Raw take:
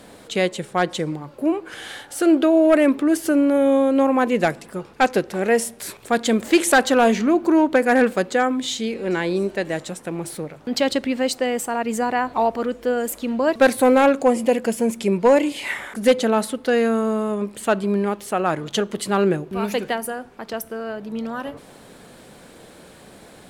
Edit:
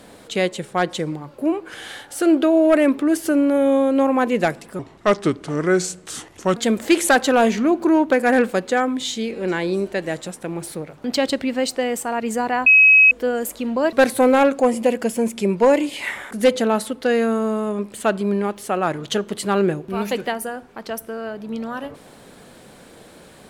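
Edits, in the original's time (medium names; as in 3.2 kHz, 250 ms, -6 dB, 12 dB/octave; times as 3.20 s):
4.79–6.19 s: speed 79%
12.29–12.74 s: bleep 2.55 kHz -7.5 dBFS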